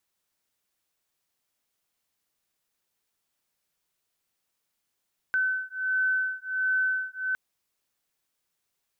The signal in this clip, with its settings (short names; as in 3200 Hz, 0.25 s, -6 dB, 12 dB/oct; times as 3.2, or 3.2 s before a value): beating tones 1520 Hz, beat 1.4 Hz, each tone -27.5 dBFS 2.01 s